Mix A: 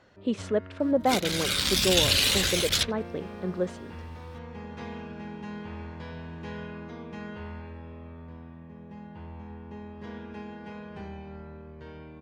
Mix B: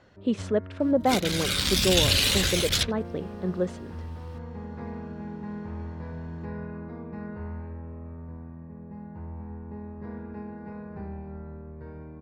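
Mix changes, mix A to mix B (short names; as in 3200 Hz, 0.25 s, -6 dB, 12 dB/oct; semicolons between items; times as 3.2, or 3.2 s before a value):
first sound: add running mean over 14 samples; master: add low shelf 220 Hz +5.5 dB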